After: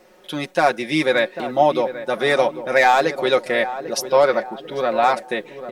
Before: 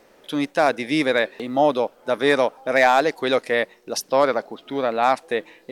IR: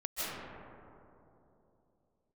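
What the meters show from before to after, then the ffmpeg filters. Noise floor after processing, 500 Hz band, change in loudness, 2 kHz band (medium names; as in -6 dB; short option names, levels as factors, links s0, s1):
-50 dBFS, +2.0 dB, +2.0 dB, +2.0 dB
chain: -filter_complex "[0:a]aecho=1:1:5.5:0.74,asplit=2[s0][s1];[s1]adelay=795,lowpass=f=1200:p=1,volume=0.282,asplit=2[s2][s3];[s3]adelay=795,lowpass=f=1200:p=1,volume=0.5,asplit=2[s4][s5];[s5]adelay=795,lowpass=f=1200:p=1,volume=0.5,asplit=2[s6][s7];[s7]adelay=795,lowpass=f=1200:p=1,volume=0.5,asplit=2[s8][s9];[s9]adelay=795,lowpass=f=1200:p=1,volume=0.5[s10];[s0][s2][s4][s6][s8][s10]amix=inputs=6:normalize=0"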